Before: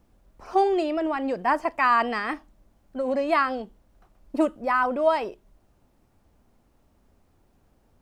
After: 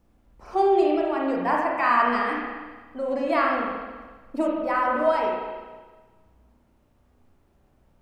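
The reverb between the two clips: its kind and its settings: spring tank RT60 1.4 s, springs 33/50 ms, chirp 55 ms, DRR -2.5 dB; trim -3.5 dB

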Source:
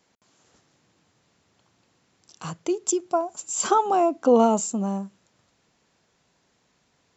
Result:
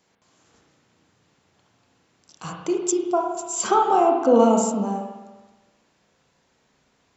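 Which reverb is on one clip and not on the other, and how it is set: spring tank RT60 1.2 s, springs 34/53 ms, chirp 70 ms, DRR 1 dB

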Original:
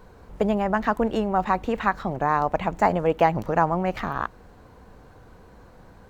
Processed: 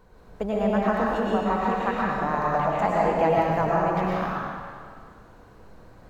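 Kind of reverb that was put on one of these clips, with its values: algorithmic reverb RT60 1.9 s, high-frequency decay 0.95×, pre-delay 75 ms, DRR -5.5 dB; trim -7 dB

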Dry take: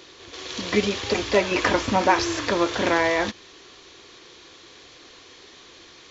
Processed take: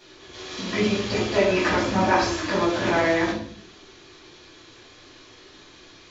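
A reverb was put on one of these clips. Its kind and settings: simulated room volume 690 m³, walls furnished, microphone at 8.4 m; trim -11 dB

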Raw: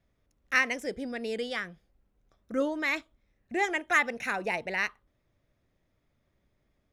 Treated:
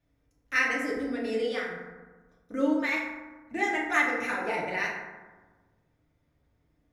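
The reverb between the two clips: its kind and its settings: FDN reverb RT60 1.3 s, low-frequency decay 1.25×, high-frequency decay 0.4×, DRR -4.5 dB; trim -5 dB

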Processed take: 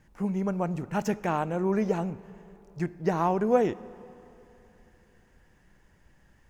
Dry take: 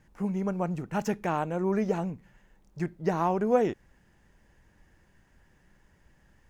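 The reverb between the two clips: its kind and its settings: algorithmic reverb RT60 3.2 s, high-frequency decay 0.65×, pre-delay 0 ms, DRR 18 dB; trim +1 dB

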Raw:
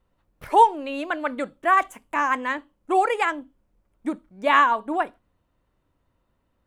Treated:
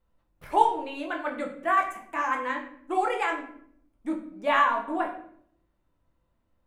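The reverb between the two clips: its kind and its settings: simulated room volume 110 m³, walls mixed, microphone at 0.77 m; trim -7.5 dB

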